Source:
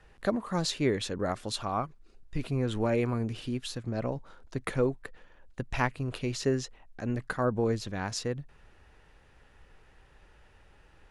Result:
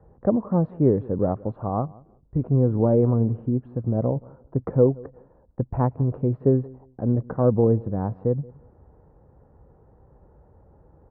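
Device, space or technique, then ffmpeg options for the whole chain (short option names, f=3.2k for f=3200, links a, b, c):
under water: -filter_complex "[0:a]highpass=47,lowpass=f=960:w=0.5412,lowpass=f=960:w=1.3066,aemphasis=mode=reproduction:type=50fm,equalizer=f=130:t=o:w=2.3:g=6.5,equalizer=f=500:t=o:w=0.28:g=4.5,asplit=2[a][b];[b]adelay=176,lowpass=f=1.9k:p=1,volume=-23dB,asplit=2[c][d];[d]adelay=176,lowpass=f=1.9k:p=1,volume=0.22[e];[a][c][e]amix=inputs=3:normalize=0,volume=4.5dB"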